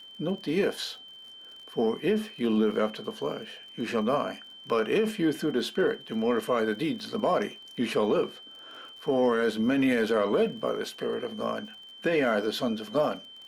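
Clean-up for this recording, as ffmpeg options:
-af "adeclick=t=4,bandreject=f=3.1k:w=30"

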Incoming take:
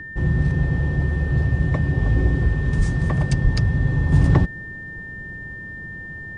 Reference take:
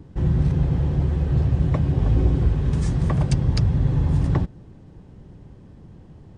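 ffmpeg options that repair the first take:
-filter_complex "[0:a]bandreject=f=1.8k:w=30,asplit=3[a][b][c];[a]afade=t=out:st=2.77:d=0.02[d];[b]highpass=f=140:w=0.5412,highpass=f=140:w=1.3066,afade=t=in:st=2.77:d=0.02,afade=t=out:st=2.89:d=0.02[e];[c]afade=t=in:st=2.89:d=0.02[f];[d][e][f]amix=inputs=3:normalize=0,asplit=3[g][h][i];[g]afade=t=out:st=3.43:d=0.02[j];[h]highpass=f=140:w=0.5412,highpass=f=140:w=1.3066,afade=t=in:st=3.43:d=0.02,afade=t=out:st=3.55:d=0.02[k];[i]afade=t=in:st=3.55:d=0.02[l];[j][k][l]amix=inputs=3:normalize=0,asetnsamples=n=441:p=0,asendcmd='4.12 volume volume -5dB',volume=0dB"

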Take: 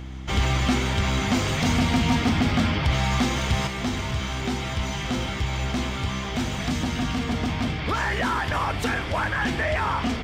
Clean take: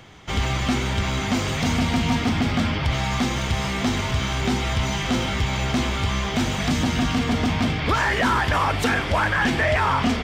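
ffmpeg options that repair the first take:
-af "bandreject=f=64.8:t=h:w=4,bandreject=f=129.6:t=h:w=4,bandreject=f=194.4:t=h:w=4,bandreject=f=259.2:t=h:w=4,bandreject=f=324:t=h:w=4,asetnsamples=n=441:p=0,asendcmd='3.67 volume volume 4.5dB',volume=0dB"

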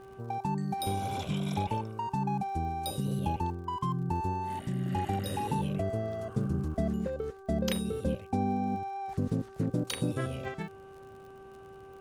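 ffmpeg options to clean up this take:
-af "adeclick=t=4,bandreject=f=388.3:t=h:w=4,bandreject=f=776.6:t=h:w=4,bandreject=f=1.1649k:t=h:w=4,bandreject=f=1.5532k:t=h:w=4"

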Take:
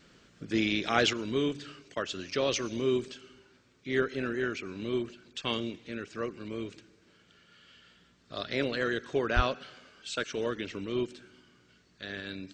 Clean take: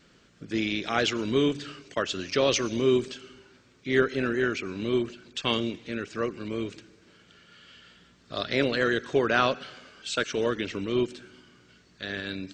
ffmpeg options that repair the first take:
-filter_complex "[0:a]asplit=3[a][b][c];[a]afade=t=out:st=9.35:d=0.02[d];[b]highpass=f=140:w=0.5412,highpass=f=140:w=1.3066,afade=t=in:st=9.35:d=0.02,afade=t=out:st=9.47:d=0.02[e];[c]afade=t=in:st=9.47:d=0.02[f];[d][e][f]amix=inputs=3:normalize=0,asetnsamples=n=441:p=0,asendcmd='1.13 volume volume 5.5dB',volume=0dB"

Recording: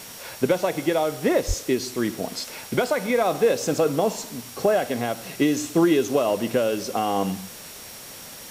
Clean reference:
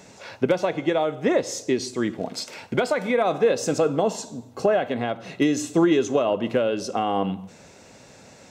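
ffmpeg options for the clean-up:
-filter_complex "[0:a]adeclick=t=4,bandreject=f=5.6k:w=30,asplit=3[a][b][c];[a]afade=t=out:st=1.47:d=0.02[d];[b]highpass=f=140:w=0.5412,highpass=f=140:w=1.3066,afade=t=in:st=1.47:d=0.02,afade=t=out:st=1.59:d=0.02[e];[c]afade=t=in:st=1.59:d=0.02[f];[d][e][f]amix=inputs=3:normalize=0,afwtdn=0.01"

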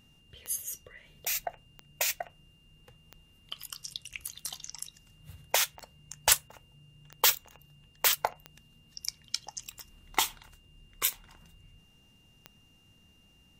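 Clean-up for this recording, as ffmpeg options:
-af "adeclick=t=4,bandreject=f=2.8k:w=30"

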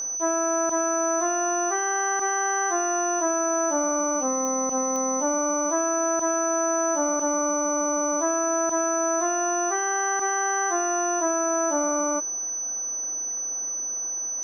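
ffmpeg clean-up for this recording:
-af "adeclick=t=4,bandreject=f=6k:w=30"

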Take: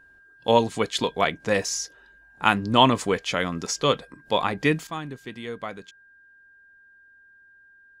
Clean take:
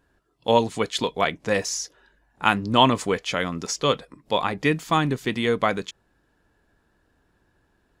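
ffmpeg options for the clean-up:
-af "bandreject=f=1.6k:w=30,asetnsamples=n=441:p=0,asendcmd='4.87 volume volume 12dB',volume=0dB"

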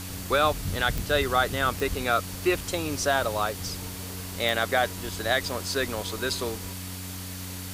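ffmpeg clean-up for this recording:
-af "adeclick=t=4,bandreject=f=92.4:t=h:w=4,bandreject=f=184.8:t=h:w=4,bandreject=f=277.2:t=h:w=4,bandreject=f=4.5k:w=30,afwtdn=0.011"

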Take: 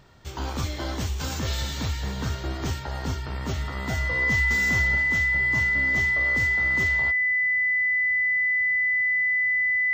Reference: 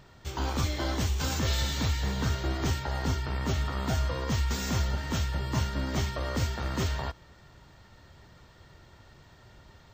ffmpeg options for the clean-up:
-af "bandreject=f=2k:w=30,asetnsamples=n=441:p=0,asendcmd='5.03 volume volume 3dB',volume=0dB"

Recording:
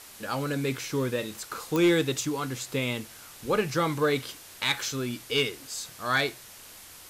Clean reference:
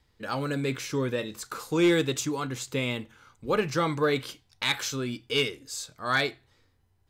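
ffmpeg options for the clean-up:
-af "adeclick=t=4,afwtdn=0.005,asetnsamples=n=441:p=0,asendcmd='6.71 volume volume -3.5dB',volume=0dB"

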